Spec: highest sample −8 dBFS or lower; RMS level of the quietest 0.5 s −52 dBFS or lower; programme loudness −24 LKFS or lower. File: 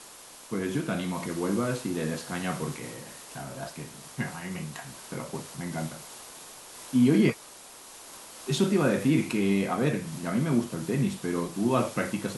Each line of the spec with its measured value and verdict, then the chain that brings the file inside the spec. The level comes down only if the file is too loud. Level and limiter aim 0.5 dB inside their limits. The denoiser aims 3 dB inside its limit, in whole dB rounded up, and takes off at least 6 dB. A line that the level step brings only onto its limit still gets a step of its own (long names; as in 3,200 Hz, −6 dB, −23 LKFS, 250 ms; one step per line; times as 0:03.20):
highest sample −10.5 dBFS: in spec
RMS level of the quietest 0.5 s −48 dBFS: out of spec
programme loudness −28.5 LKFS: in spec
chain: broadband denoise 7 dB, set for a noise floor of −48 dBFS